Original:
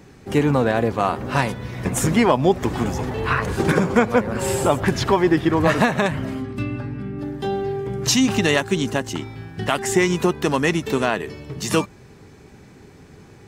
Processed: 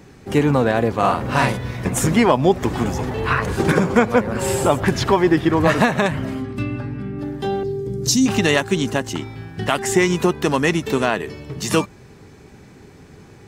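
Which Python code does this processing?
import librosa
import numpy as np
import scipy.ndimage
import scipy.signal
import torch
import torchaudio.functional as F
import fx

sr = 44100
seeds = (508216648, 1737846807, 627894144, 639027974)

y = fx.doubler(x, sr, ms=47.0, db=-2.0, at=(0.98, 1.77))
y = fx.band_shelf(y, sr, hz=1400.0, db=-14.5, octaves=2.7, at=(7.63, 8.26))
y = y * librosa.db_to_amplitude(1.5)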